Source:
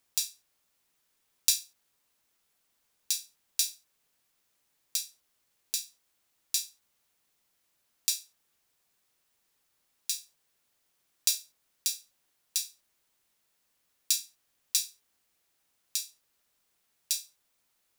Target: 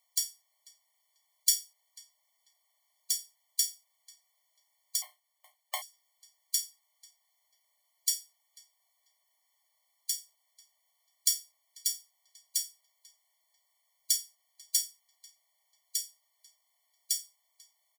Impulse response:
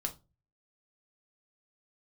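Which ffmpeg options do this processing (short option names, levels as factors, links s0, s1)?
-filter_complex "[0:a]asplit=2[s0][s1];[s1]adelay=492,lowpass=f=2200:p=1,volume=0.141,asplit=2[s2][s3];[s3]adelay=492,lowpass=f=2200:p=1,volume=0.34,asplit=2[s4][s5];[s5]adelay=492,lowpass=f=2200:p=1,volume=0.34[s6];[s0][s2][s4][s6]amix=inputs=4:normalize=0,asettb=1/sr,asplit=3[s7][s8][s9];[s7]atrim=end=5.024[s10];[s8]atrim=start=5.02:end=5.82,asetpts=PTS-STARTPTS,afade=t=in:d=0.004:c=qsin,afade=t=out:st=0.796:d=0.004:c=qsin,aeval=exprs='abs(val(0))':c=same[s11];[s9]atrim=start=5.816[s12];[s10][s11]acrossfade=d=0.004:c1=hsin:c2=qsin[s13];[s13][s12]acrossfade=d=0.004:c1=qsin:c2=hsin,afftfilt=real='re*eq(mod(floor(b*sr/1024/590),2),1)':imag='im*eq(mod(floor(b*sr/1024/590),2),1)':win_size=1024:overlap=0.75,volume=1.33"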